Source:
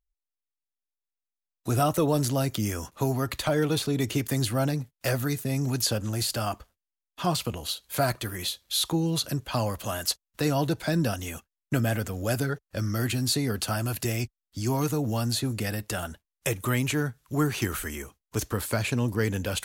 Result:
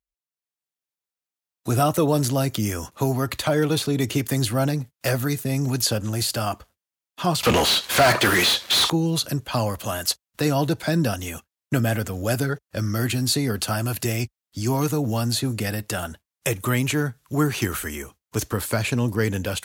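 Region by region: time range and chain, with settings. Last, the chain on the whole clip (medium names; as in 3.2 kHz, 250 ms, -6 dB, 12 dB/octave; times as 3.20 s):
7.43–8.90 s: overdrive pedal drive 36 dB, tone 5.9 kHz, clips at -12.5 dBFS + treble shelf 6.3 kHz -7.5 dB
whole clip: high-pass 63 Hz; level rider gain up to 6 dB; trim -2 dB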